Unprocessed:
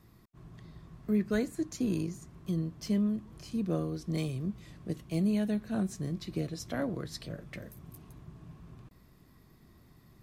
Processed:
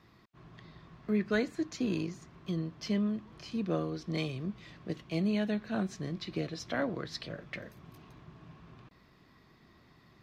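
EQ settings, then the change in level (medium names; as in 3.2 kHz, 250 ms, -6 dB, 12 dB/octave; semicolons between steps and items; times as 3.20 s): distance through air 230 m; tilt EQ +3 dB/octave; +5.0 dB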